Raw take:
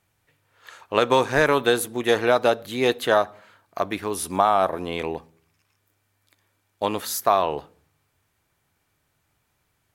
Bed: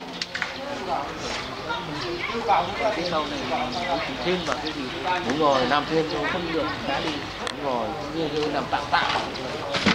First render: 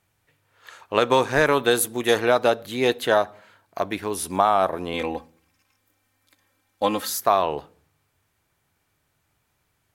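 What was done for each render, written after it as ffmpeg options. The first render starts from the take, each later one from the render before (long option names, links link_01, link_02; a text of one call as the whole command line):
ffmpeg -i in.wav -filter_complex "[0:a]asettb=1/sr,asplit=3[link_01][link_02][link_03];[link_01]atrim=end=1.714[link_04];[link_02]atrim=start=1.71:end=2.2,asetpts=PTS-STARTPTS,afade=type=in:duration=0.004:curve=qsin,afade=type=out:start_time=0.486:duration=0.004:curve=qsin,highshelf=frequency=5500:gain=7[link_05];[link_03]atrim=start=2.196[link_06];[link_04][link_05]acrossfade=duration=0.004:curve1=hsin:curve2=qsin[link_07];[link_07][link_06]acrossfade=duration=0.004:curve1=qsin:curve2=hsin,asettb=1/sr,asplit=3[link_08][link_09][link_10];[link_08]atrim=end=2.774[link_11];[link_09]atrim=start=2.77:end=4.37,asetpts=PTS-STARTPTS,afade=type=in:duration=0.004:curve=qsin,afade=type=out:start_time=1.596:duration=0.004:curve=qsin,bandreject=frequency=1200:width=12[link_12];[link_10]atrim=start=4.366[link_13];[link_11][link_12]acrossfade=duration=0.004:curve1=hsin:curve2=qsin[link_14];[link_14][link_13]acrossfade=duration=0.004:curve1=qsin:curve2=hsin,asettb=1/sr,asplit=3[link_15][link_16][link_17];[link_15]atrim=end=4.934[link_18];[link_16]atrim=start=4.93:end=7.1,asetpts=PTS-STARTPTS,afade=type=in:duration=0.004:curve=qsin,afade=type=out:start_time=2.166:duration=0.004:curve=qsin,aecho=1:1:3.8:0.79,atrim=end_sample=95697[link_19];[link_17]atrim=start=7.096[link_20];[link_18][link_19]acrossfade=duration=0.004:curve1=hsin:curve2=qsin[link_21];[link_21][link_20]acrossfade=duration=0.004:curve1=qsin:curve2=hsin" out.wav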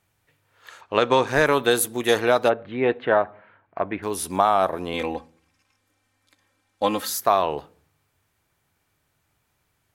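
ffmpeg -i in.wav -filter_complex "[0:a]asettb=1/sr,asplit=3[link_01][link_02][link_03];[link_01]atrim=end=0.814[link_04];[link_02]atrim=start=0.81:end=1.27,asetpts=PTS-STARTPTS,afade=type=in:duration=0.004:curve=qsin,afade=type=out:start_time=0.456:duration=0.004:curve=qsin,lowpass=6000[link_05];[link_03]atrim=start=1.266[link_06];[link_04][link_05]acrossfade=duration=0.004:curve1=hsin:curve2=qsin[link_07];[link_07][link_06]acrossfade=duration=0.004:curve1=qsin:curve2=hsin,asplit=3[link_08][link_09][link_10];[link_08]afade=type=out:start_time=2.48:duration=0.02[link_11];[link_09]lowpass=frequency=2400:width=0.5412,lowpass=frequency=2400:width=1.3066,afade=type=in:start_time=2.48:duration=0.02,afade=type=out:start_time=4.02:duration=0.02[link_12];[link_10]afade=type=in:start_time=4.02:duration=0.02[link_13];[link_11][link_12][link_13]amix=inputs=3:normalize=0,asettb=1/sr,asplit=3[link_14][link_15][link_16];[link_14]atrim=end=5.144[link_17];[link_15]atrim=start=5.14:end=6.86,asetpts=PTS-STARTPTS,afade=type=in:duration=0.004:curve=qsin,afade=type=out:start_time=1.716:duration=0.004:curve=qsin,lowpass=9700[link_18];[link_16]atrim=start=6.856[link_19];[link_17][link_18]acrossfade=duration=0.004:curve1=hsin:curve2=qsin[link_20];[link_20][link_19]acrossfade=duration=0.004:curve1=qsin:curve2=hsin" out.wav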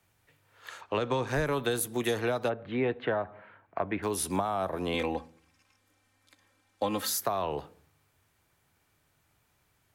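ffmpeg -i in.wav -filter_complex "[0:a]acrossover=split=130|570|5800[link_01][link_02][link_03][link_04];[link_03]alimiter=limit=-14.5dB:level=0:latency=1[link_05];[link_01][link_02][link_05][link_04]amix=inputs=4:normalize=0,acrossover=split=160[link_06][link_07];[link_07]acompressor=threshold=-27dB:ratio=6[link_08];[link_06][link_08]amix=inputs=2:normalize=0" out.wav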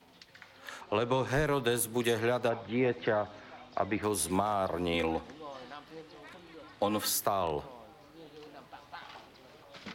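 ffmpeg -i in.wav -i bed.wav -filter_complex "[1:a]volume=-25dB[link_01];[0:a][link_01]amix=inputs=2:normalize=0" out.wav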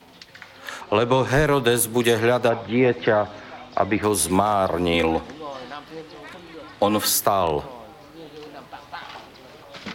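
ffmpeg -i in.wav -af "volume=10.5dB" out.wav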